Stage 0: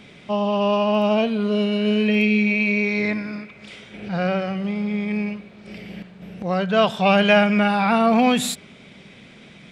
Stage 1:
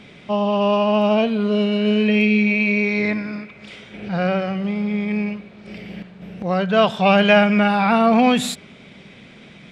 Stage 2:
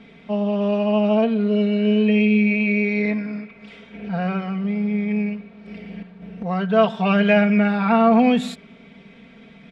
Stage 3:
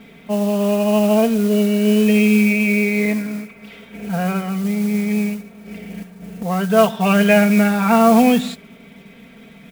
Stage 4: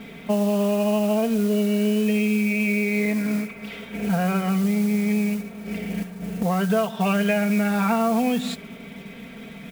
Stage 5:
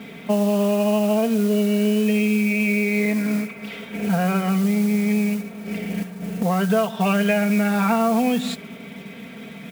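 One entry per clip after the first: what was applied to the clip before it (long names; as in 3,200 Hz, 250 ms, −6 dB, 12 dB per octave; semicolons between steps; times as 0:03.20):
high-shelf EQ 7,900 Hz −8 dB; level +2 dB
low-pass filter 2,200 Hz 6 dB per octave; comb filter 4.4 ms, depth 72%; level −4 dB
noise that follows the level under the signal 20 dB; level +3 dB
downward compressor 10 to 1, threshold −22 dBFS, peak gain reduction 14.5 dB; level +3.5 dB
high-pass filter 100 Hz; level +2 dB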